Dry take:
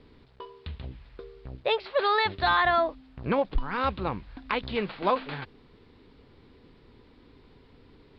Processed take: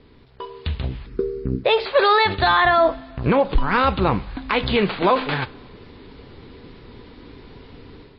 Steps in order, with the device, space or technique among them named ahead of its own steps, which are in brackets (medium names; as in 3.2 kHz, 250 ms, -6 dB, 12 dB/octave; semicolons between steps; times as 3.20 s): 1.06–1.64 s: FFT filter 110 Hz 0 dB, 200 Hz +12 dB, 430 Hz +9 dB, 660 Hz -20 dB, 1.3 kHz -4 dB, 2.4 kHz -10 dB, 3.4 kHz -15 dB, 8.6 kHz +10 dB; two-slope reverb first 0.39 s, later 2 s, from -19 dB, DRR 15.5 dB; low-bitrate web radio (level rider gain up to 9 dB; peak limiter -11.5 dBFS, peak gain reduction 7 dB; trim +4.5 dB; MP3 24 kbps 16 kHz)